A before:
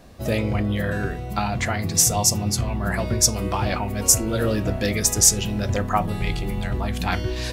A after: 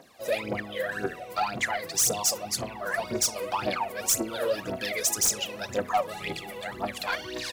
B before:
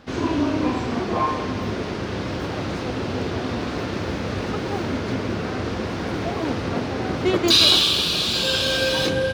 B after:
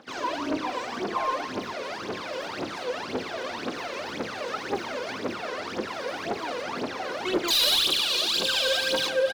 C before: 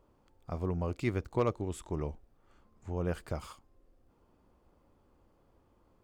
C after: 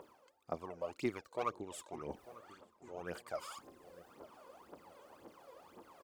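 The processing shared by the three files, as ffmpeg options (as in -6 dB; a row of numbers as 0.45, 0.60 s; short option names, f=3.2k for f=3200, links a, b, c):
-filter_complex "[0:a]highpass=390,areverse,acompressor=mode=upward:threshold=-40dB:ratio=2.5,areverse,volume=14dB,asoftclip=hard,volume=-14dB,aphaser=in_gain=1:out_gain=1:delay=2.1:decay=0.76:speed=1.9:type=triangular,asoftclip=type=tanh:threshold=-11dB,asplit=2[a][b];[b]adelay=895,lowpass=f=940:p=1,volume=-16dB,asplit=2[c][d];[d]adelay=895,lowpass=f=940:p=1,volume=0.47,asplit=2[e][f];[f]adelay=895,lowpass=f=940:p=1,volume=0.47,asplit=2[g][h];[h]adelay=895,lowpass=f=940:p=1,volume=0.47[i];[a][c][e][g][i]amix=inputs=5:normalize=0,volume=-5.5dB"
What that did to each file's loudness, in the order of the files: -6.5, -5.5, -8.0 LU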